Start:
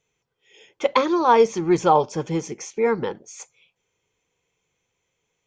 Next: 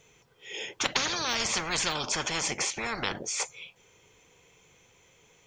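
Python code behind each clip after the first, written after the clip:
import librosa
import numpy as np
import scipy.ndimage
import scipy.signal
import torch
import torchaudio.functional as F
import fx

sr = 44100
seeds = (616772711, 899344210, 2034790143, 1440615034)

y = fx.spectral_comp(x, sr, ratio=10.0)
y = y * 10.0 ** (-2.0 / 20.0)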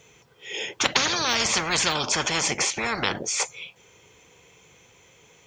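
y = scipy.signal.sosfilt(scipy.signal.butter(2, 49.0, 'highpass', fs=sr, output='sos'), x)
y = fx.peak_eq(y, sr, hz=11000.0, db=-2.0, octaves=0.77)
y = y * 10.0 ** (6.0 / 20.0)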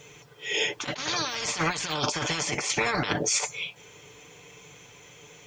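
y = x + 0.5 * np.pad(x, (int(6.8 * sr / 1000.0), 0))[:len(x)]
y = fx.over_compress(y, sr, threshold_db=-27.0, ratio=-0.5)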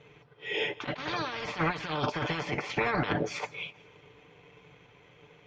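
y = fx.leveller(x, sr, passes=1)
y = fx.air_absorb(y, sr, metres=340.0)
y = fx.echo_feedback(y, sr, ms=160, feedback_pct=53, wet_db=-23)
y = y * 10.0 ** (-3.5 / 20.0)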